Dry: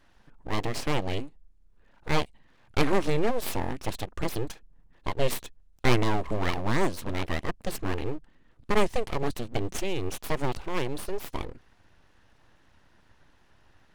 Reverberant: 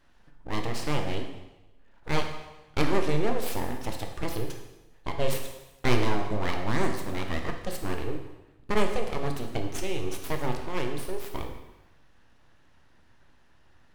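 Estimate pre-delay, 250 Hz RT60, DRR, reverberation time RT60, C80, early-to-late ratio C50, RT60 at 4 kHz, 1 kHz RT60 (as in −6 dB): 7 ms, 1.0 s, 3.5 dB, 1.0 s, 8.5 dB, 6.0 dB, 1.0 s, 1.0 s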